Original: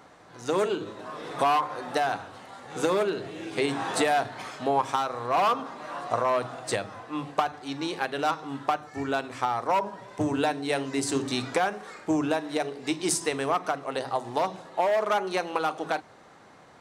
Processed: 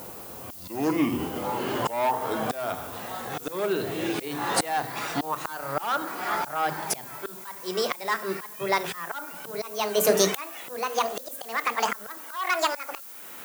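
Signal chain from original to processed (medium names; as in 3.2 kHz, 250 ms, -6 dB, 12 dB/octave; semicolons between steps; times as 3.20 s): gliding tape speed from 67% -> 183%; slow attack 557 ms; added noise violet -52 dBFS; trim +9 dB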